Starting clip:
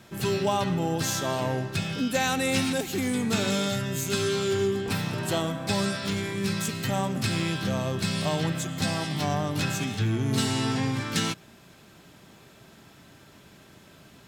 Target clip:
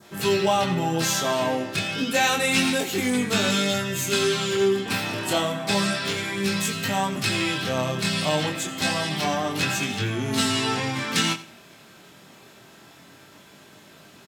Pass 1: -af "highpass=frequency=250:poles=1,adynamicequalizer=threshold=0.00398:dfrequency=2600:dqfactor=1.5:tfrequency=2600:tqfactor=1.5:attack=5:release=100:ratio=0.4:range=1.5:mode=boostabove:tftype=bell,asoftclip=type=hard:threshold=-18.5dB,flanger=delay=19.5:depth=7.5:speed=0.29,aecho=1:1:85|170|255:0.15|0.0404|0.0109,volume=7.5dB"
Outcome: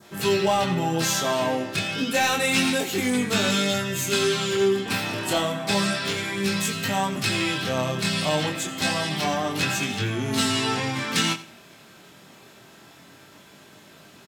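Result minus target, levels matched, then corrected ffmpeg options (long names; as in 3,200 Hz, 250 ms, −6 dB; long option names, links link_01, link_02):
hard clipping: distortion +27 dB
-af "highpass=frequency=250:poles=1,adynamicequalizer=threshold=0.00398:dfrequency=2600:dqfactor=1.5:tfrequency=2600:tqfactor=1.5:attack=5:release=100:ratio=0.4:range=1.5:mode=boostabove:tftype=bell,asoftclip=type=hard:threshold=-12.5dB,flanger=delay=19.5:depth=7.5:speed=0.29,aecho=1:1:85|170|255:0.15|0.0404|0.0109,volume=7.5dB"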